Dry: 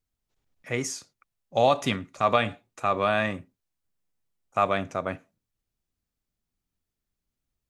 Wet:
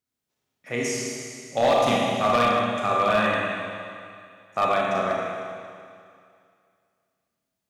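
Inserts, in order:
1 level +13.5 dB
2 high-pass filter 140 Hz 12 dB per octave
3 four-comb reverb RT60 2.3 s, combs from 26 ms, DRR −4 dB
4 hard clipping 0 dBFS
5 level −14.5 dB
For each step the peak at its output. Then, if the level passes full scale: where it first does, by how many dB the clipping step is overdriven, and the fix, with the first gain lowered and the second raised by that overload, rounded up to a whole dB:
+5.0, +5.5, +10.0, 0.0, −14.5 dBFS
step 1, 10.0 dB
step 1 +3.5 dB, step 5 −4.5 dB

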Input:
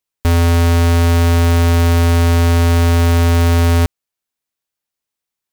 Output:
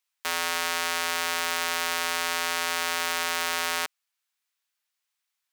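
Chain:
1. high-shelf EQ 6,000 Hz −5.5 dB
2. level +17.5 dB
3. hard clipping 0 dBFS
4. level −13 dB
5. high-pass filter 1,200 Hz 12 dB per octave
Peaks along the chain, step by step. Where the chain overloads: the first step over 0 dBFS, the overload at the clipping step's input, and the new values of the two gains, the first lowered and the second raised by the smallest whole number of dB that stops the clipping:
−11.0, +6.5, 0.0, −13.0, −10.0 dBFS
step 2, 6.5 dB
step 2 +10.5 dB, step 4 −6 dB

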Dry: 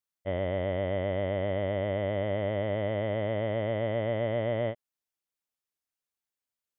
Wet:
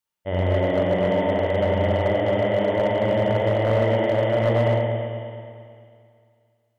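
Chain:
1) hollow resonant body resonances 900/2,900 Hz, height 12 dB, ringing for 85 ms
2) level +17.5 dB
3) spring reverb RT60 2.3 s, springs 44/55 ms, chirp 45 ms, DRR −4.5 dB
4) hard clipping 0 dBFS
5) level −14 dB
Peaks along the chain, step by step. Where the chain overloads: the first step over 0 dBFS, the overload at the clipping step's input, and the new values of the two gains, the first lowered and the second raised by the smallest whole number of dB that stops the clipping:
−19.0, −1.5, +6.5, 0.0, −14.0 dBFS
step 3, 6.5 dB
step 2 +10.5 dB, step 5 −7 dB

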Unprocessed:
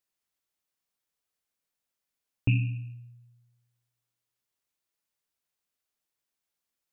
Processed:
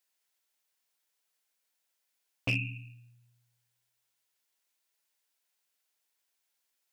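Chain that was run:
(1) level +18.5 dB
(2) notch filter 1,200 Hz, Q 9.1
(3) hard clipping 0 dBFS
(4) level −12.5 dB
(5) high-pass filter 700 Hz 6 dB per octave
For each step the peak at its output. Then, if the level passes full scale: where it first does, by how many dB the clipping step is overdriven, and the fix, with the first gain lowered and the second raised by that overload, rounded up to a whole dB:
+5.5, +5.5, 0.0, −12.5, −17.5 dBFS
step 1, 5.5 dB
step 1 +12.5 dB, step 4 −6.5 dB

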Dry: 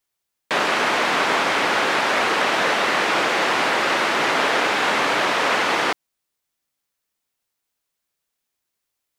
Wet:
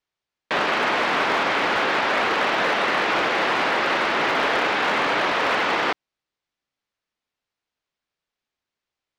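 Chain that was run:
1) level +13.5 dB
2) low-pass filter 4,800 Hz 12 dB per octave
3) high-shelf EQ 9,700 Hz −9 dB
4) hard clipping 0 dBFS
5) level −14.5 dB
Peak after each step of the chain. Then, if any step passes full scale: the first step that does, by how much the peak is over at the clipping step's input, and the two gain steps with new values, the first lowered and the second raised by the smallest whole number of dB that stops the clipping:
+7.0, +6.5, +6.5, 0.0, −14.5 dBFS
step 1, 6.5 dB
step 1 +6.5 dB, step 5 −7.5 dB

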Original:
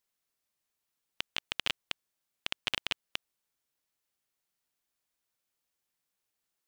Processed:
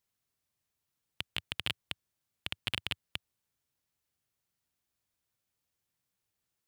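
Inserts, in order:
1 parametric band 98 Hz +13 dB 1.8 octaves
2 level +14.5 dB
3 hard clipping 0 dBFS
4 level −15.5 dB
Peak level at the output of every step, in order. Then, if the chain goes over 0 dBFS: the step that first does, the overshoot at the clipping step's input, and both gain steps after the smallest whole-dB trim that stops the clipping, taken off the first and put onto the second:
−10.5, +4.0, 0.0, −15.5 dBFS
step 2, 4.0 dB
step 2 +10.5 dB, step 4 −11.5 dB

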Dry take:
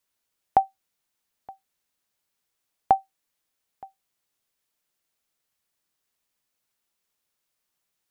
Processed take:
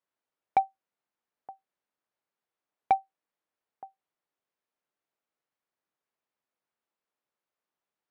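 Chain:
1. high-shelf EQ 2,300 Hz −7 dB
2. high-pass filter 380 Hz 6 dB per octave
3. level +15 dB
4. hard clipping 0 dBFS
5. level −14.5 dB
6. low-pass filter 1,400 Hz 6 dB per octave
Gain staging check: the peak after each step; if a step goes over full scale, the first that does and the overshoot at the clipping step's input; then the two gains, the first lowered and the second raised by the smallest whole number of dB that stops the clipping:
−7.5, −8.0, +7.0, 0.0, −14.5, −14.5 dBFS
step 3, 7.0 dB
step 3 +8 dB, step 5 −7.5 dB

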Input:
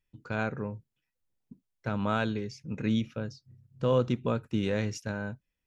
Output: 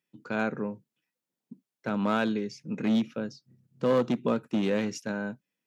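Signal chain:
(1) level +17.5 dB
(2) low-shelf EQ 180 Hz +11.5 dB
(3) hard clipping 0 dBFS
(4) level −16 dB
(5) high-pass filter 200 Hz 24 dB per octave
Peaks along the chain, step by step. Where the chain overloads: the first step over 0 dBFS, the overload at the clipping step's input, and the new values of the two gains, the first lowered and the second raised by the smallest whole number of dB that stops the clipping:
+3.5, +6.0, 0.0, −16.0, −13.5 dBFS
step 1, 6.0 dB
step 1 +11.5 dB, step 4 −10 dB

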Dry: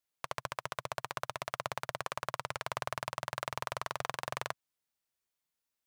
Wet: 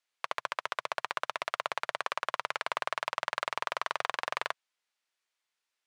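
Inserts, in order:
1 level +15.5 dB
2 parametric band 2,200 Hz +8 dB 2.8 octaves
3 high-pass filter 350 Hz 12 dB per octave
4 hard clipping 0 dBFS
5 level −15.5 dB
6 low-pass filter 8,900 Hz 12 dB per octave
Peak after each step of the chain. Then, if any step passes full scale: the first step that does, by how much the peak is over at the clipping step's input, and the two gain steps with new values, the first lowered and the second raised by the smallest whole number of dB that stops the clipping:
+1.0, +6.5, +5.0, 0.0, −15.5, −15.0 dBFS
step 1, 5.0 dB
step 1 +10.5 dB, step 5 −10.5 dB

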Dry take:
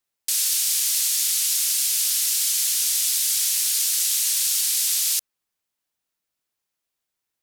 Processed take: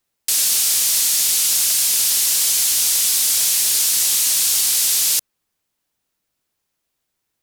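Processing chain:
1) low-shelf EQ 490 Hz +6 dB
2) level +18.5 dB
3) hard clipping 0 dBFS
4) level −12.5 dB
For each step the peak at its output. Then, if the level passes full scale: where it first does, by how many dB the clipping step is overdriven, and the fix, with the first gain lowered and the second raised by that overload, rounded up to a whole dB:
−9.0, +9.5, 0.0, −12.5 dBFS
step 2, 9.5 dB
step 2 +8.5 dB, step 4 −2.5 dB

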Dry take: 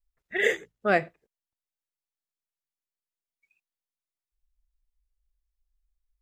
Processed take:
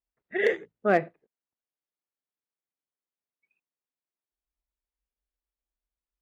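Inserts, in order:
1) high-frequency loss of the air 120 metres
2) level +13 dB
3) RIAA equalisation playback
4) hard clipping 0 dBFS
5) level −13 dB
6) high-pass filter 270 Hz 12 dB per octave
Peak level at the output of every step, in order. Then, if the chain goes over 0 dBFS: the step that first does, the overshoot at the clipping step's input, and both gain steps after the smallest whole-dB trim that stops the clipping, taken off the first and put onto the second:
−10.0, +3.0, +3.5, 0.0, −13.0, −9.5 dBFS
step 2, 3.5 dB
step 2 +9 dB, step 5 −9 dB

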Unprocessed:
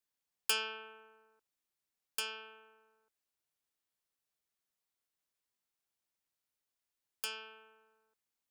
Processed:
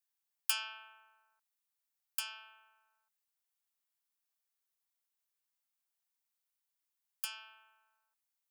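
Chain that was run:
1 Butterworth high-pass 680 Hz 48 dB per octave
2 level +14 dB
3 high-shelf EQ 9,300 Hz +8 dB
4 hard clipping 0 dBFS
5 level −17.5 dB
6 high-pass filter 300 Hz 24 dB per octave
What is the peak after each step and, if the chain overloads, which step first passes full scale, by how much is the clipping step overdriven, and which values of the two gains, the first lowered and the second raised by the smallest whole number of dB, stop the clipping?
−15.5, −1.5, +3.0, 0.0, −17.5, −16.5 dBFS
step 3, 3.0 dB
step 2 +11 dB, step 5 −14.5 dB

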